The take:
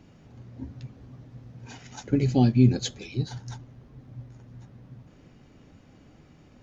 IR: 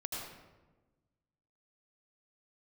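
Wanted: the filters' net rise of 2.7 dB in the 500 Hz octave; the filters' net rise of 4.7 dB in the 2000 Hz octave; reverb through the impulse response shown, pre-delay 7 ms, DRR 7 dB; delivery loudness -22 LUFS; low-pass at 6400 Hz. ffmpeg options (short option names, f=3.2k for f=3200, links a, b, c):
-filter_complex "[0:a]lowpass=6.4k,equalizer=f=500:t=o:g=3.5,equalizer=f=2k:t=o:g=6,asplit=2[a][b];[1:a]atrim=start_sample=2205,adelay=7[c];[b][c]afir=irnorm=-1:irlink=0,volume=-8.5dB[d];[a][d]amix=inputs=2:normalize=0"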